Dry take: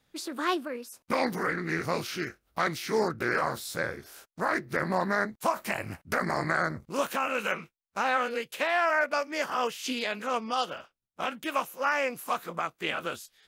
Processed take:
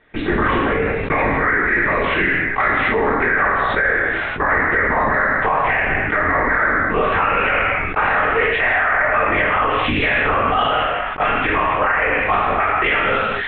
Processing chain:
parametric band 280 Hz +8.5 dB 0.5 octaves
notch filter 1,500 Hz, Q 14
linear-prediction vocoder at 8 kHz whisper
low-pass with resonance 1,900 Hz, resonance Q 2.3
reverb whose tail is shaped and stops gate 290 ms falling, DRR −2.5 dB
downward compressor, threshold −24 dBFS, peak gain reduction 10 dB
low-shelf EQ 400 Hz −8.5 dB
boost into a limiter +23 dB
level that may fall only so fast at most 21 dB per second
level −7.5 dB

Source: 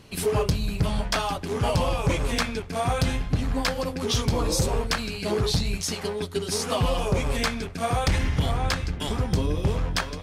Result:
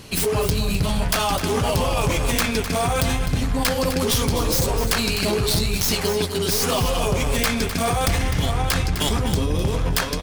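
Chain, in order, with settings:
stylus tracing distortion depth 0.098 ms
high-shelf EQ 4,700 Hz +8 dB
in parallel at −1 dB: compressor whose output falls as the input rises −28 dBFS, ratio −0.5
on the sum: single-tap delay 255 ms −10 dB

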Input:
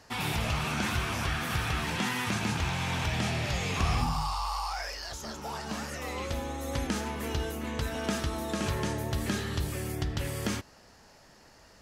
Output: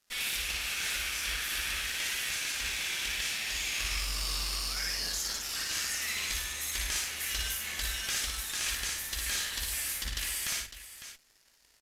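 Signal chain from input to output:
inverse Chebyshev band-stop filter 110–710 Hz, stop band 50 dB
high-shelf EQ 3,500 Hz +7.5 dB
speech leveller 0.5 s
dead-zone distortion −54 dBFS
harmonic generator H 2 −14 dB, 8 −15 dB, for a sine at −27.5 dBFS
on a send: multi-tap delay 57/106/554 ms −3/−14/−11.5 dB
on the sum: downsampling to 32,000 Hz

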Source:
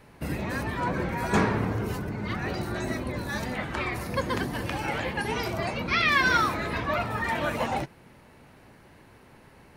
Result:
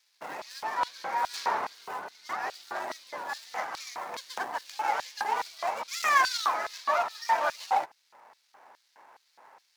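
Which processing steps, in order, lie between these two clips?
running median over 15 samples
auto-filter high-pass square 2.4 Hz 840–4,200 Hz

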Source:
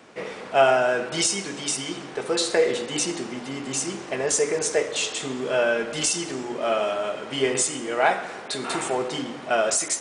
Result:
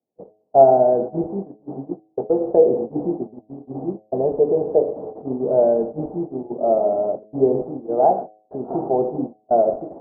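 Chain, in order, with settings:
noise gate −29 dBFS, range −40 dB
elliptic low-pass filter 760 Hz, stop band 70 dB
hum removal 106.7 Hz, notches 7
level +7.5 dB

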